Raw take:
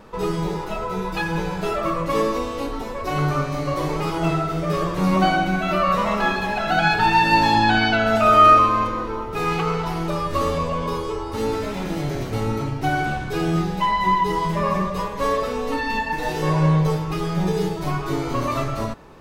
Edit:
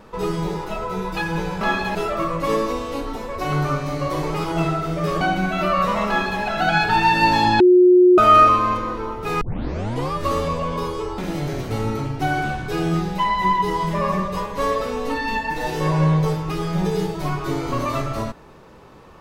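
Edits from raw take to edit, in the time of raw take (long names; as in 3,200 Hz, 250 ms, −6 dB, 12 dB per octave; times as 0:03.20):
0:04.87–0:05.31: remove
0:06.18–0:06.52: duplicate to 0:01.61
0:07.70–0:08.28: beep over 361 Hz −8 dBFS
0:09.51: tape start 0.72 s
0:11.28–0:11.80: remove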